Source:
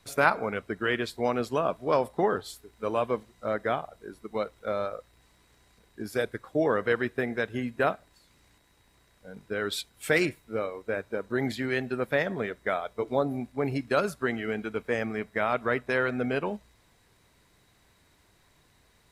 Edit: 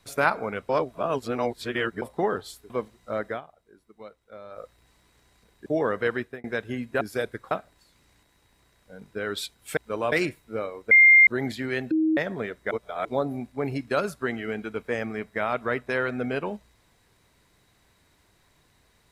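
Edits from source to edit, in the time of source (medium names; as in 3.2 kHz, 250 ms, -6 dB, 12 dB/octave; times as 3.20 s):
0.69–2.02 s: reverse
2.70–3.05 s: move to 10.12 s
3.63–4.98 s: dip -13.5 dB, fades 0.13 s
6.01–6.51 s: move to 7.86 s
7.02–7.29 s: fade out
10.91–11.27 s: bleep 2.11 kHz -10.5 dBFS
11.91–12.17 s: bleep 316 Hz -19 dBFS
12.71–13.05 s: reverse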